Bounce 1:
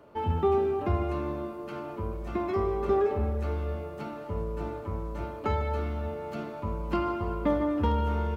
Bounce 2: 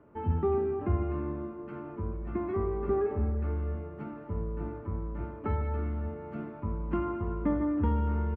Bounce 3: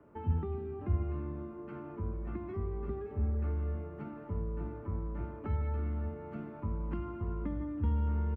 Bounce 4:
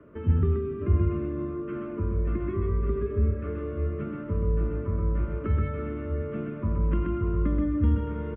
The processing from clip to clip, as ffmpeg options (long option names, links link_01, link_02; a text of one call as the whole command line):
ffmpeg -i in.wav -af "firequalizer=gain_entry='entry(300,0);entry(560,-9);entry(1000,-6);entry(1800,-5);entry(4100,-26);entry(6300,-29)':delay=0.05:min_phase=1" out.wav
ffmpeg -i in.wav -filter_complex "[0:a]acrossover=split=190|3000[link_01][link_02][link_03];[link_02]acompressor=threshold=-40dB:ratio=6[link_04];[link_01][link_04][link_03]amix=inputs=3:normalize=0,volume=-1.5dB" out.wav
ffmpeg -i in.wav -af "asuperstop=centerf=810:order=4:qfactor=2.2,aecho=1:1:129:0.668,aresample=8000,aresample=44100,volume=8dB" out.wav